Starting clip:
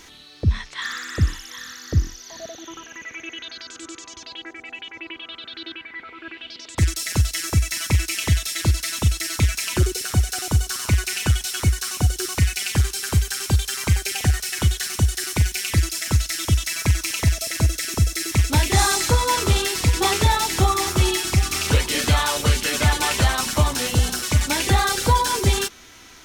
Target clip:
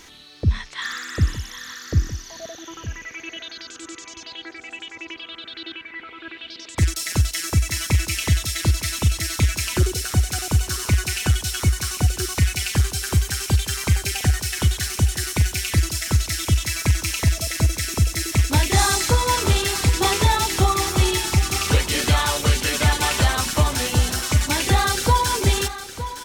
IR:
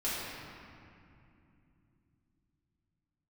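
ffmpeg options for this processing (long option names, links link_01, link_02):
-af "aecho=1:1:912:0.237"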